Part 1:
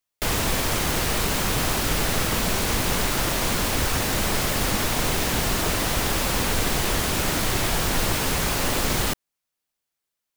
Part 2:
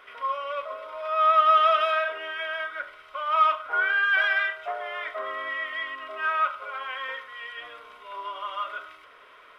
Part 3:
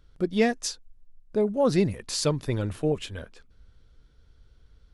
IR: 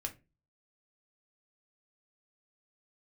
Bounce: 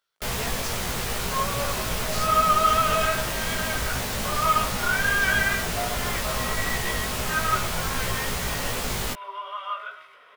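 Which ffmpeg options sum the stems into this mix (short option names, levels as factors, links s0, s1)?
-filter_complex "[0:a]volume=0.841[s0];[1:a]highpass=130,adelay=1100,volume=1.33[s1];[2:a]highpass=870,volume=0.631[s2];[s0][s1][s2]amix=inputs=3:normalize=0,equalizer=f=310:w=7.5:g=-13.5,flanger=delay=16:depth=2.6:speed=2.5"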